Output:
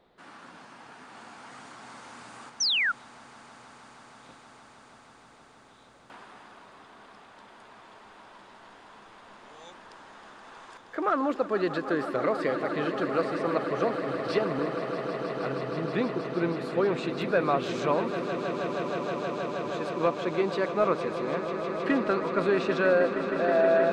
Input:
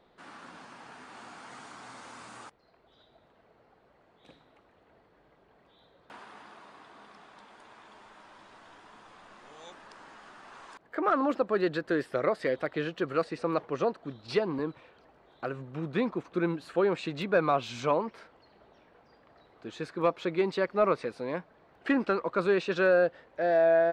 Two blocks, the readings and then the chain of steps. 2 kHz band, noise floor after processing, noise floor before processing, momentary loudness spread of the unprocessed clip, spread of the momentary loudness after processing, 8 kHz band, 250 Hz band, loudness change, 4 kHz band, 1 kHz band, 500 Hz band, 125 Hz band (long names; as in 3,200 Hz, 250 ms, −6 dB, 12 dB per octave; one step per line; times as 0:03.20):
+3.5 dB, −54 dBFS, −64 dBFS, 22 LU, 21 LU, can't be measured, +2.5 dB, +1.5 dB, +9.5 dB, +2.5 dB, +1.5 dB, +2.5 dB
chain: echo that builds up and dies away 158 ms, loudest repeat 8, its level −12.5 dB
sound drawn into the spectrogram fall, 0:02.60–0:02.92, 1,300–6,300 Hz −25 dBFS